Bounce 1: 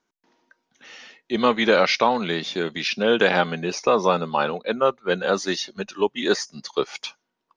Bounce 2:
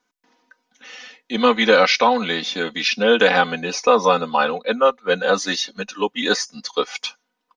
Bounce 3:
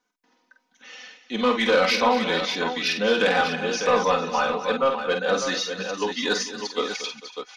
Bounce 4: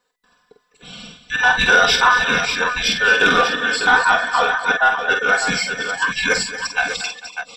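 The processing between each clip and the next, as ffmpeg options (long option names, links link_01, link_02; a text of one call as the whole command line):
ffmpeg -i in.wav -af "lowshelf=frequency=410:gain=-6,aecho=1:1:4:0.86,volume=2.5dB" out.wav
ffmpeg -i in.wav -filter_complex "[0:a]asoftclip=type=tanh:threshold=-8dB,asplit=2[link_01][link_02];[link_02]aecho=0:1:48|230|284|448|598:0.473|0.211|0.126|0.106|0.398[link_03];[link_01][link_03]amix=inputs=2:normalize=0,volume=-4.5dB" out.wav
ffmpeg -i in.wav -af "afftfilt=real='real(if(between(b,1,1012),(2*floor((b-1)/92)+1)*92-b,b),0)':imag='imag(if(between(b,1,1012),(2*floor((b-1)/92)+1)*92-b,b),0)*if(between(b,1,1012),-1,1)':win_size=2048:overlap=0.75,volume=6dB" out.wav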